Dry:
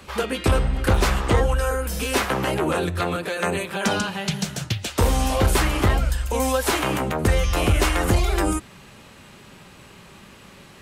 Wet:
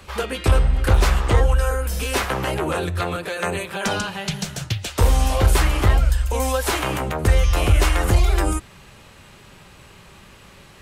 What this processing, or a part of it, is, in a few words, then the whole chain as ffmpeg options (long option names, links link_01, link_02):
low shelf boost with a cut just above: -af "lowshelf=frequency=83:gain=7.5,equalizer=frequency=230:width_type=o:width=1.1:gain=-5"